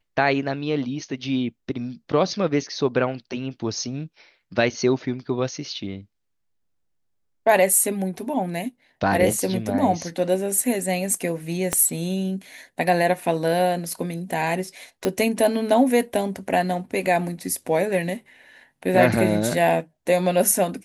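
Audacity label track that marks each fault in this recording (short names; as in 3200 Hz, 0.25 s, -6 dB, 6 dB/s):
11.730000	11.730000	pop -6 dBFS
15.050000	15.050000	pop -8 dBFS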